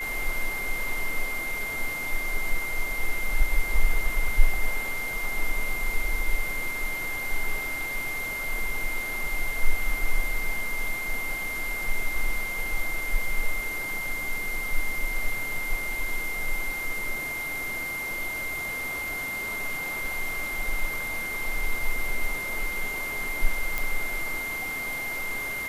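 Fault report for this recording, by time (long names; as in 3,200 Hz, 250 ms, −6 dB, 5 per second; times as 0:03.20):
whistle 2,100 Hz −30 dBFS
0:23.78: click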